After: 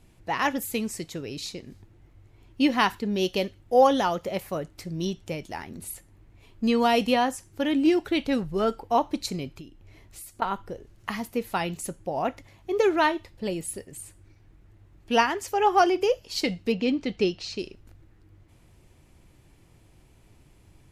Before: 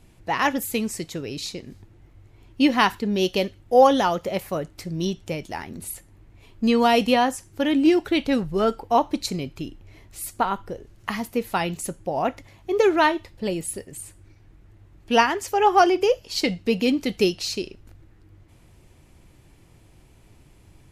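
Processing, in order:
0:09.53–0:10.42: downward compressor 6 to 1, threshold −37 dBFS, peak gain reduction 16.5 dB
0:16.72–0:17.59: high-frequency loss of the air 110 metres
level −3.5 dB

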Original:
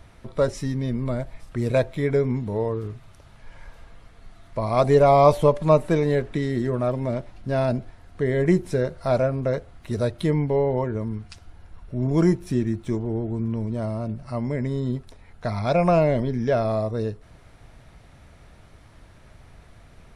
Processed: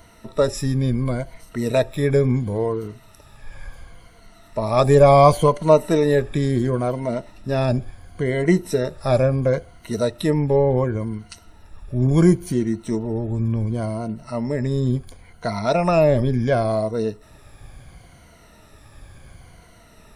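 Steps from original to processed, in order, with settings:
rippled gain that drifts along the octave scale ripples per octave 1.9, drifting −0.71 Hz, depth 12 dB
high-shelf EQ 8,300 Hz +11.5 dB
level +1.5 dB

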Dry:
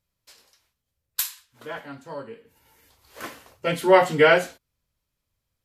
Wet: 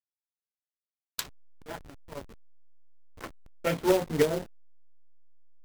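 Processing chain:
treble cut that deepens with the level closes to 350 Hz, closed at −12.5 dBFS
log-companded quantiser 4 bits
slack as between gear wheels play −27 dBFS
level −2.5 dB

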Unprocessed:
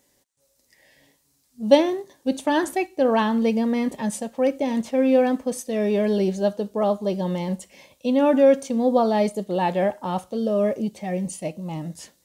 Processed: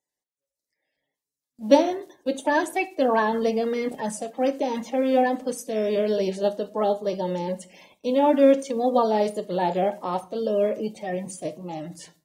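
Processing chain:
spectral magnitudes quantised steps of 30 dB
noise gate with hold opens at −42 dBFS
bass and treble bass −8 dB, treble −2 dB
rectangular room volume 350 cubic metres, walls furnished, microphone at 0.41 metres

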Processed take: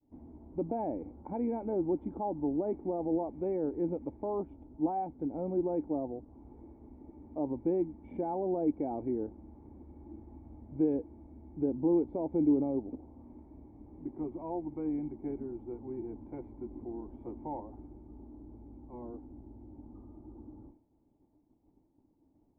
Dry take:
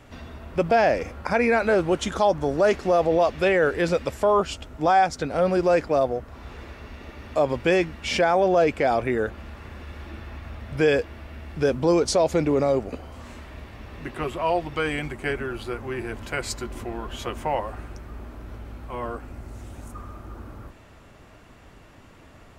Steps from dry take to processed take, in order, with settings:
downward expander −41 dBFS
formant resonators in series u

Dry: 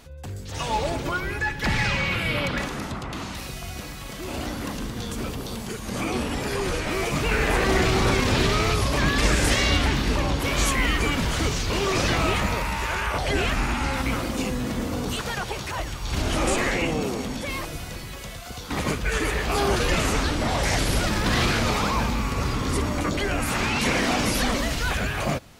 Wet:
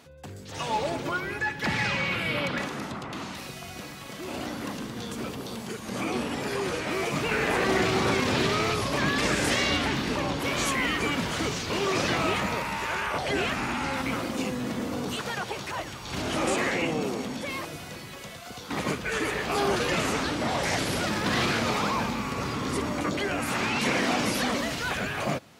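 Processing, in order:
high-pass filter 140 Hz 12 dB per octave
high-shelf EQ 6,000 Hz −4.5 dB
level −2 dB

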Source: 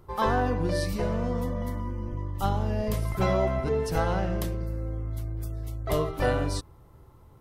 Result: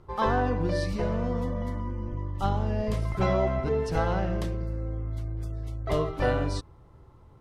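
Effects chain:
high-frequency loss of the air 68 metres

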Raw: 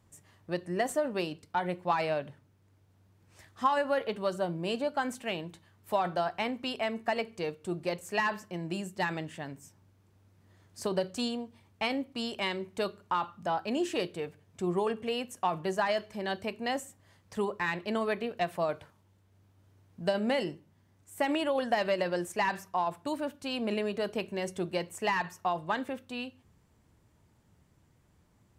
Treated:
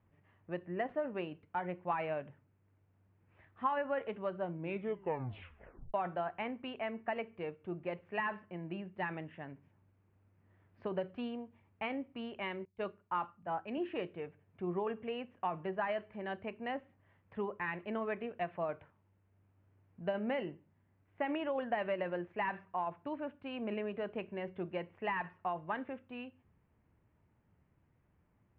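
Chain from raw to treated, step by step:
0:04.55: tape stop 1.39 s
Butterworth low-pass 2,700 Hz 36 dB per octave
0:12.65–0:13.78: multiband upward and downward expander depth 100%
level −6.5 dB

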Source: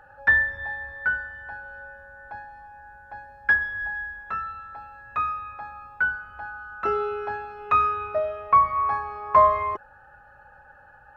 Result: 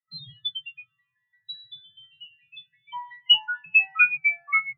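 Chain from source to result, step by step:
high-pass filter 40 Hz 24 dB per octave
high-shelf EQ 2,800 Hz −10 dB
notch comb filter 160 Hz
gate on every frequency bin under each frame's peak −25 dB strong
phase shifter 0.48 Hz, delay 1.4 ms, feedback 42%
delay with pitch and tempo change per echo 107 ms, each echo −2 semitones, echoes 3
wrong playback speed 33 rpm record played at 78 rpm
graphic EQ with 10 bands 125 Hz +8 dB, 250 Hz −5 dB, 500 Hz +6 dB, 1,000 Hz +4 dB, 2,000 Hz +3 dB
every bin expanded away from the loudest bin 2.5 to 1
level −1.5 dB

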